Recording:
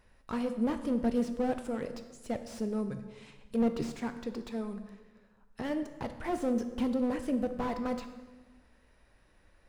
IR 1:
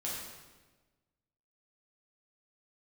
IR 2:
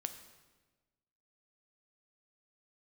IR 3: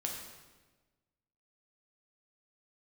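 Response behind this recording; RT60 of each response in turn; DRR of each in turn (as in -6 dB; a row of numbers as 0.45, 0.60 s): 2; 1.3, 1.3, 1.3 s; -6.5, 8.0, -0.5 dB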